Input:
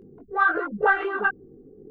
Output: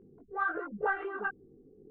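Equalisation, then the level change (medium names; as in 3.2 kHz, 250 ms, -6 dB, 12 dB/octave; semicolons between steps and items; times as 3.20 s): distance through air 420 m; -8.5 dB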